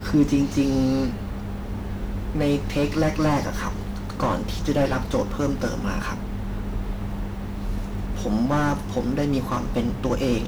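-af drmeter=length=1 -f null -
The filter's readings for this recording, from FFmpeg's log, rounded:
Channel 1: DR: 10.0
Overall DR: 10.0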